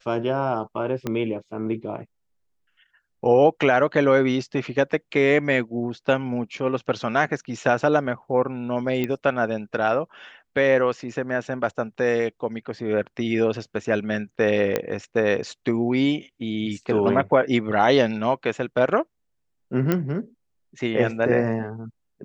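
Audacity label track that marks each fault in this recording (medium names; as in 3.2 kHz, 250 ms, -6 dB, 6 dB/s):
1.070000	1.070000	pop -13 dBFS
9.040000	9.040000	pop -13 dBFS
14.760000	14.760000	pop -8 dBFS
19.920000	19.920000	pop -9 dBFS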